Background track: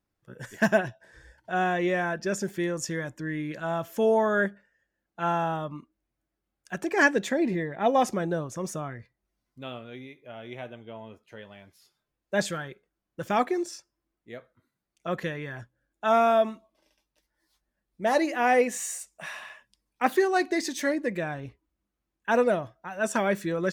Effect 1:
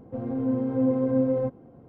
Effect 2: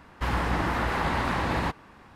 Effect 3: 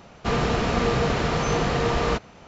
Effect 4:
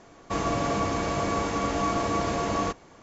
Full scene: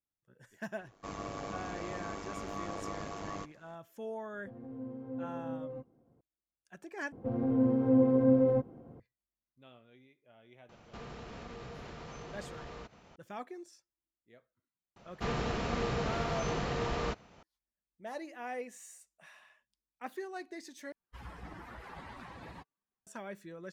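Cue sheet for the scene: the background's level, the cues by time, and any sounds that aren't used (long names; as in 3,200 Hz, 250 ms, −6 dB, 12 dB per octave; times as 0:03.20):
background track −18.5 dB
0:00.73: mix in 4 −11 dB + amplitude modulation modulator 100 Hz, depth 60%
0:04.33: mix in 1 −17 dB
0:07.12: overwrite with 1 −1.5 dB
0:10.69: mix in 3 −11 dB + downward compressor 3 to 1, threshold −36 dBFS
0:14.96: mix in 3 −11 dB
0:20.92: overwrite with 2 −17 dB + spectral dynamics exaggerated over time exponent 2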